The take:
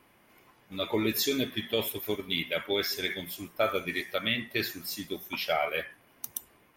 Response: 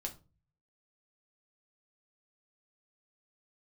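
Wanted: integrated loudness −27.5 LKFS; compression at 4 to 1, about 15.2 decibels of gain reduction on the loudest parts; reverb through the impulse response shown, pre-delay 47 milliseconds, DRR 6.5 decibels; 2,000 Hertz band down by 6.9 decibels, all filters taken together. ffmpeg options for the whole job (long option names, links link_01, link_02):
-filter_complex "[0:a]equalizer=frequency=2000:width_type=o:gain=-8.5,acompressor=threshold=-43dB:ratio=4,asplit=2[link_01][link_02];[1:a]atrim=start_sample=2205,adelay=47[link_03];[link_02][link_03]afir=irnorm=-1:irlink=0,volume=-5.5dB[link_04];[link_01][link_04]amix=inputs=2:normalize=0,volume=16.5dB"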